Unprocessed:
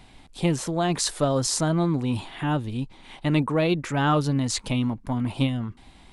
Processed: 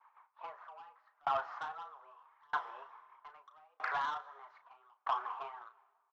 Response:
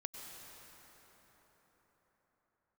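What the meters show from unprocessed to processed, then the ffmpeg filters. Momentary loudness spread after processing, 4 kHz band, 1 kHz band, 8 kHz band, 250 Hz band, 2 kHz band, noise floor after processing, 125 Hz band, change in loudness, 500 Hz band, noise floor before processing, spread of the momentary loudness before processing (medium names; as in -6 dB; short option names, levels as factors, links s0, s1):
21 LU, -23.0 dB, -7.0 dB, under -40 dB, under -40 dB, -9.5 dB, -77 dBFS, under -40 dB, -14.5 dB, -21.5 dB, -52 dBFS, 8 LU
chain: -filter_complex "[0:a]lowpass=f=1200:w=0.5412,lowpass=f=1200:w=1.3066,agate=range=0.0224:threshold=0.01:ratio=3:detection=peak,highpass=f=820:w=0.5412,highpass=f=820:w=1.3066,acompressor=threshold=0.00631:ratio=3,afreqshift=140,aphaser=in_gain=1:out_gain=1:delay=4.3:decay=0.46:speed=1.6:type=triangular,aresample=16000,asoftclip=type=tanh:threshold=0.0112,aresample=44100,asplit=2[s0][s1];[s1]adelay=34,volume=0.355[s2];[s0][s2]amix=inputs=2:normalize=0,asplit=2[s3][s4];[1:a]atrim=start_sample=2205,lowshelf=f=140:g=-10[s5];[s4][s5]afir=irnorm=-1:irlink=0,volume=0.501[s6];[s3][s6]amix=inputs=2:normalize=0,aeval=exprs='val(0)*pow(10,-37*if(lt(mod(0.79*n/s,1),2*abs(0.79)/1000),1-mod(0.79*n/s,1)/(2*abs(0.79)/1000),(mod(0.79*n/s,1)-2*abs(0.79)/1000)/(1-2*abs(0.79)/1000))/20)':c=same,volume=4.47"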